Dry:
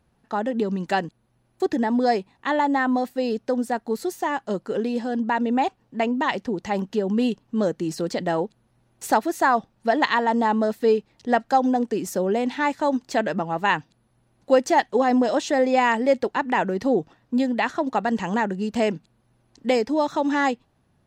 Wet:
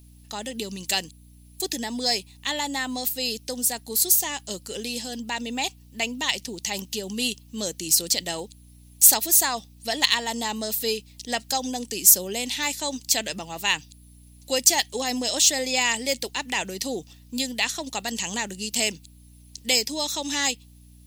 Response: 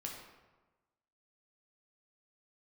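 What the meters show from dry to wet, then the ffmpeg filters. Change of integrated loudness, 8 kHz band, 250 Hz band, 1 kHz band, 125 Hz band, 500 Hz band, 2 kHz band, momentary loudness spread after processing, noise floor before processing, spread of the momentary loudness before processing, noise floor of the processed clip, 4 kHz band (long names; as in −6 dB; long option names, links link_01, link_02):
0.0 dB, +19.5 dB, −10.0 dB, −9.5 dB, −7.5 dB, −10.0 dB, −1.5 dB, 13 LU, −66 dBFS, 7 LU, −50 dBFS, +12.0 dB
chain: -af "aexciter=amount=6.5:drive=6.7:freq=2200,aeval=exprs='val(0)+0.0112*(sin(2*PI*60*n/s)+sin(2*PI*2*60*n/s)/2+sin(2*PI*3*60*n/s)/3+sin(2*PI*4*60*n/s)/4+sin(2*PI*5*60*n/s)/5)':channel_layout=same,aemphasis=mode=production:type=50fm,volume=-9.5dB"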